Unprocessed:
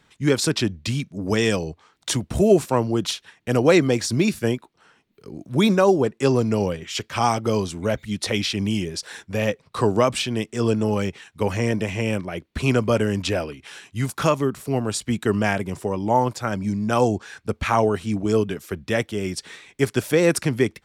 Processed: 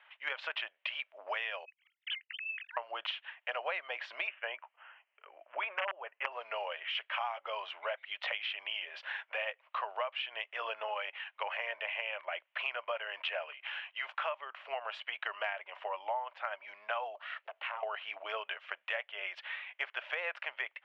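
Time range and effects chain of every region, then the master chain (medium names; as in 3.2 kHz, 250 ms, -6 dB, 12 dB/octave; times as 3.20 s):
1.65–2.77 s: formants replaced by sine waves + elliptic high-pass 1.9 kHz, stop band 60 dB + waveshaping leveller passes 2
4.27–6.32 s: integer overflow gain 8 dB + steep low-pass 3.1 kHz 72 dB/octave
17.15–17.83 s: peaking EQ 4.2 kHz +4.5 dB 0.91 oct + compression 12:1, threshold -29 dBFS + ring modulator 230 Hz
whole clip: Chebyshev band-pass 590–3000 Hz, order 4; tilt EQ +2.5 dB/octave; compression 6:1, threshold -34 dBFS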